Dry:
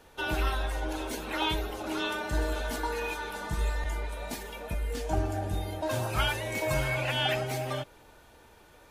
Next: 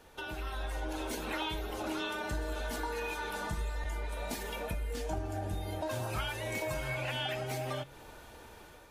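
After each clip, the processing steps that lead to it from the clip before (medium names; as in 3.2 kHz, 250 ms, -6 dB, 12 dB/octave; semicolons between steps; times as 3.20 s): compression 4:1, threshold -39 dBFS, peak gain reduction 14 dB; de-hum 137.2 Hz, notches 31; level rider gain up to 6 dB; trim -1.5 dB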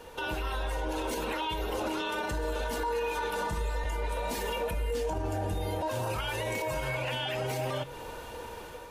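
small resonant body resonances 490/960/2800 Hz, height 11 dB, ringing for 55 ms; peak limiter -31 dBFS, peak gain reduction 10.5 dB; trim +7 dB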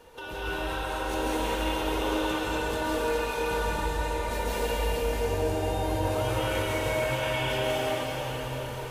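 reverberation RT60 4.9 s, pre-delay 123 ms, DRR -9 dB; trim -5.5 dB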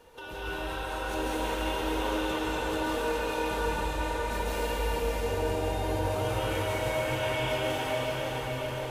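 tape echo 566 ms, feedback 70%, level -5 dB, low-pass 6 kHz; trim -3 dB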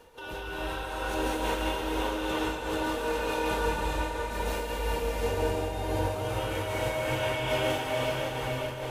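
random flutter of the level, depth 60%; trim +3 dB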